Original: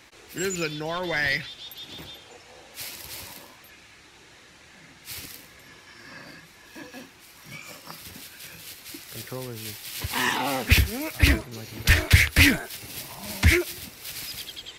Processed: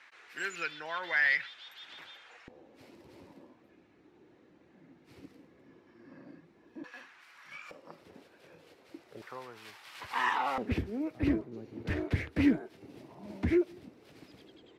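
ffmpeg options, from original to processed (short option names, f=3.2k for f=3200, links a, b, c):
-af "asetnsamples=n=441:p=0,asendcmd='2.48 bandpass f 300;6.84 bandpass f 1500;7.71 bandpass f 460;9.22 bandpass f 1100;10.58 bandpass f 320',bandpass=f=1.6k:t=q:w=1.6:csg=0"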